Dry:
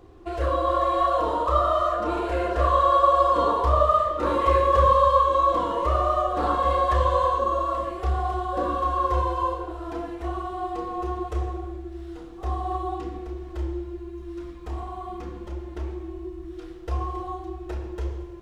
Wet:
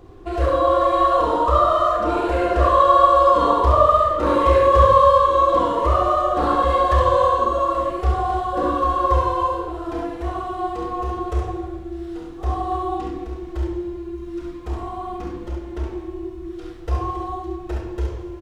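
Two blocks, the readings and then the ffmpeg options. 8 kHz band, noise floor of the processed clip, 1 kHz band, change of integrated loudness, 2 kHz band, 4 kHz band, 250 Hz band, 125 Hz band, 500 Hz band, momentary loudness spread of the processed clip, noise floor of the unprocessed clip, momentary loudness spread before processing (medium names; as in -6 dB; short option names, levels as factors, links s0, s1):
no reading, -35 dBFS, +4.5 dB, +5.0 dB, +5.0 dB, +4.5 dB, +6.0 dB, +4.0 dB, +6.0 dB, 17 LU, -40 dBFS, 18 LU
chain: -af "lowshelf=f=220:g=3.5,aecho=1:1:48|68:0.376|0.596,volume=1.41"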